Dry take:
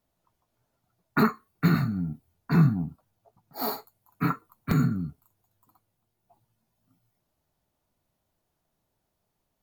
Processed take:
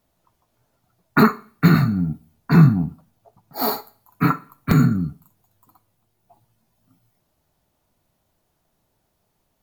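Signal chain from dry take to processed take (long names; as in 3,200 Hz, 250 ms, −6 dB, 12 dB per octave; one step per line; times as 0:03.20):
four-comb reverb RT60 0.47 s, DRR 19 dB
level +8 dB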